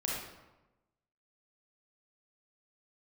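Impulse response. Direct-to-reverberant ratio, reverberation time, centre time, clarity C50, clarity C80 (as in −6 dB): −4.5 dB, 1.1 s, 70 ms, −1.0 dB, 3.0 dB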